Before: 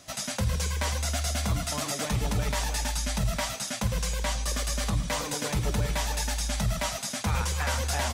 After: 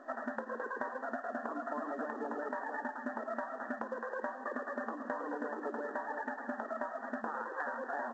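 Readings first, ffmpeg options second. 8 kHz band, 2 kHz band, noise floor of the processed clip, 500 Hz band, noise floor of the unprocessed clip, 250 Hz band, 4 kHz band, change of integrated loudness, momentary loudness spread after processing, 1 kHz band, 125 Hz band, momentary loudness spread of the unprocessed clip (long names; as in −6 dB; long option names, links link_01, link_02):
below −40 dB, −6.0 dB, −47 dBFS, −3.0 dB, −37 dBFS, −7.0 dB, below −35 dB, −10.5 dB, 2 LU, −3.5 dB, below −35 dB, 2 LU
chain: -af "afftfilt=real='re*between(b*sr/4096,220,1900)':imag='im*between(b*sr/4096,220,1900)':win_size=4096:overlap=0.75,acompressor=threshold=-39dB:ratio=20,volume=4.5dB" -ar 16000 -c:a pcm_mulaw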